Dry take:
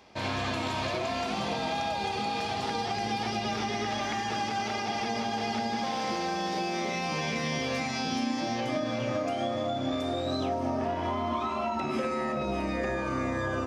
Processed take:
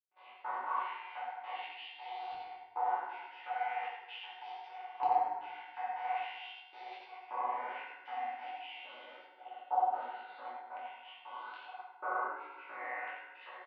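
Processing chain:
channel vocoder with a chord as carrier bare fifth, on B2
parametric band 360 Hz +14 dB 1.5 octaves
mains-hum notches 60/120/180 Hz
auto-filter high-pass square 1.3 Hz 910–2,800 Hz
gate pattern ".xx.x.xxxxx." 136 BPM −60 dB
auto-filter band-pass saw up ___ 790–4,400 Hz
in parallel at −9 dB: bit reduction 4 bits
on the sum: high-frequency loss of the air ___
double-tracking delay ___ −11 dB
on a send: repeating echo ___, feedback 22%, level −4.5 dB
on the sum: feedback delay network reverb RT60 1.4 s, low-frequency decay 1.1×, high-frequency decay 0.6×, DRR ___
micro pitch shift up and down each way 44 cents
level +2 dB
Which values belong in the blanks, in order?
0.43 Hz, 320 metres, 19 ms, 89 ms, −2.5 dB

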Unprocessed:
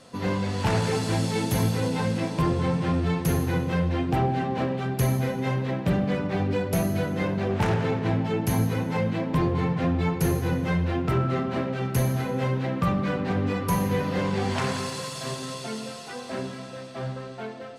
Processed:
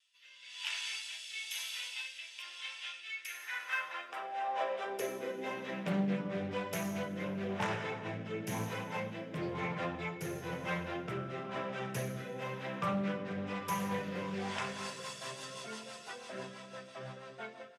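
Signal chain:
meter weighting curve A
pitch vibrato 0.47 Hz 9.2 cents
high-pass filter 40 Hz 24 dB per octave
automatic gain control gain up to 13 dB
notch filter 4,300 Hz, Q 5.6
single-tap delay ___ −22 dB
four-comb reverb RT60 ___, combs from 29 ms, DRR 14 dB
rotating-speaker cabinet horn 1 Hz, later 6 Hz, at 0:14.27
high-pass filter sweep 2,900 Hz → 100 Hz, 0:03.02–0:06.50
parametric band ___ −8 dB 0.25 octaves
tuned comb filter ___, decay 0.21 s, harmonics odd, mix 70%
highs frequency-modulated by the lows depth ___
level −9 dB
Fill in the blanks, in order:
472 ms, 1.8 s, 250 Hz, 200 Hz, 0.25 ms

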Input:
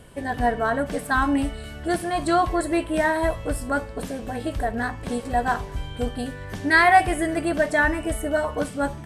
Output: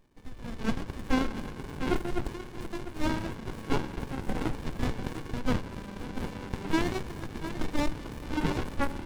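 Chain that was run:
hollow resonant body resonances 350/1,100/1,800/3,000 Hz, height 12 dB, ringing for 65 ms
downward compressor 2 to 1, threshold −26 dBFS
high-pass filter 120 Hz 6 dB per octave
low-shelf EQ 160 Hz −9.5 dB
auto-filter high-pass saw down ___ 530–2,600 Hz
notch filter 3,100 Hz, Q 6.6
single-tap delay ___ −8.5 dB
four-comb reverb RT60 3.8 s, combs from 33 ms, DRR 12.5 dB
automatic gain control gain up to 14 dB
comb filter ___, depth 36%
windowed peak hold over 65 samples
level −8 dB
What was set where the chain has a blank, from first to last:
0.44 Hz, 698 ms, 1.3 ms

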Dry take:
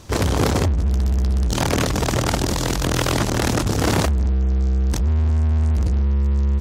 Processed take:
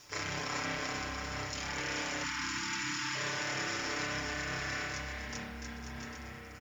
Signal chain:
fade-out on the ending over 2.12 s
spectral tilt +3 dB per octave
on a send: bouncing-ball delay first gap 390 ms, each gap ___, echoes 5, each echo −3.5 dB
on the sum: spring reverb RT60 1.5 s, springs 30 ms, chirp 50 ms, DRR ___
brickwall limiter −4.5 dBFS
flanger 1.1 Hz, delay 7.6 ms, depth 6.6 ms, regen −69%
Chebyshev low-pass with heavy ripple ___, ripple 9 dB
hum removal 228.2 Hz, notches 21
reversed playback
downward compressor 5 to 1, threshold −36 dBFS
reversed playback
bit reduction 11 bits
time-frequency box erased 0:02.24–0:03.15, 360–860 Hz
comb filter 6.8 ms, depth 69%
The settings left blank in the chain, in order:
0.75×, −5.5 dB, 7,200 Hz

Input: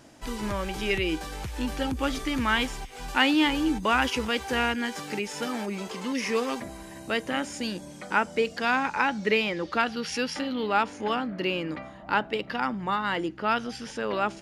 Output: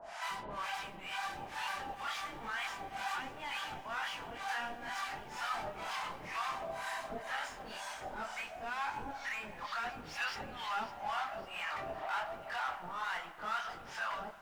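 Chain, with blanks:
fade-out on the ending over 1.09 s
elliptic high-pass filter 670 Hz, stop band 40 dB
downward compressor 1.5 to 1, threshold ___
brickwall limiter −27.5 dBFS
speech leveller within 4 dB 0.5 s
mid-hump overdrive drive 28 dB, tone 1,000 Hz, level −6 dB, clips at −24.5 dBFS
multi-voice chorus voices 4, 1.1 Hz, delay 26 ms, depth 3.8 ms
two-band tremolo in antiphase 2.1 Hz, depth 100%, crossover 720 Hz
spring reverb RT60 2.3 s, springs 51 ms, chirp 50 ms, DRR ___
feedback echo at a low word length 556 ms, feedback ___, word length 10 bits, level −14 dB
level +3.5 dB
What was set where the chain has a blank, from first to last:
−41 dBFS, 14.5 dB, 55%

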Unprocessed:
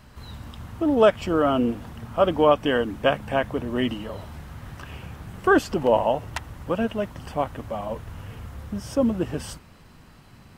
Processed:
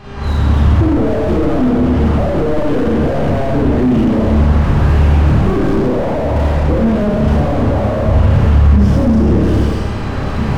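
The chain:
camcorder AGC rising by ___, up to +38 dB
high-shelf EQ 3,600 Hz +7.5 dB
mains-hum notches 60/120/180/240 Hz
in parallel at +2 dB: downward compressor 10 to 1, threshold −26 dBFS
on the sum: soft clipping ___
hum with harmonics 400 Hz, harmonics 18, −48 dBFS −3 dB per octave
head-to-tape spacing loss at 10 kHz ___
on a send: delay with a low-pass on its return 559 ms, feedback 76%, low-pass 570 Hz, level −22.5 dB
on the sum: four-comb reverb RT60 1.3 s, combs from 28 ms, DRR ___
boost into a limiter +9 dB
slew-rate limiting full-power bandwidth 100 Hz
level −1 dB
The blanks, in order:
9.1 dB per second, −13 dBFS, 31 dB, −8.5 dB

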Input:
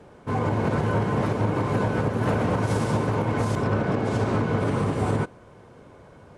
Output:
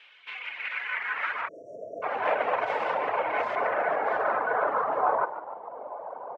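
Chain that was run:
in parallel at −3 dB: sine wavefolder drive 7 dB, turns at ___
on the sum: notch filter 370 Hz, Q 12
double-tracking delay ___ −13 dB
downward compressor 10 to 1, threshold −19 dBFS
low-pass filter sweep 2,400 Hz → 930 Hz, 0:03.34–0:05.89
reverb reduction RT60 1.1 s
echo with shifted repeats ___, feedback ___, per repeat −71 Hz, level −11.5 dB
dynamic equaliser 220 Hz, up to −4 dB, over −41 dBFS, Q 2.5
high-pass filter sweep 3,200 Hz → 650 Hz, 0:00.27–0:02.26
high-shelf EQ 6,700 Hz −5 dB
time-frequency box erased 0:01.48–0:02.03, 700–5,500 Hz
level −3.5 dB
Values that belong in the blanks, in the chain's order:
−13 dBFS, 44 ms, 145 ms, 53%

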